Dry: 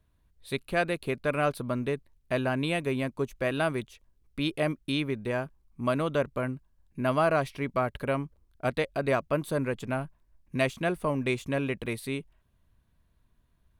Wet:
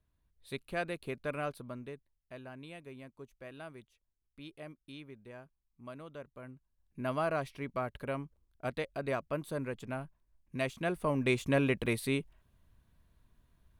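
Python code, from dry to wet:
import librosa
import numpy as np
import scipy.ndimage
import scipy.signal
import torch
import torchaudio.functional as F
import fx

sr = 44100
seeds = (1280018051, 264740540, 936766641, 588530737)

y = fx.gain(x, sr, db=fx.line((1.3, -8.5), (2.32, -19.5), (6.33, -19.5), (7.0, -8.0), (10.58, -8.0), (11.49, 1.0)))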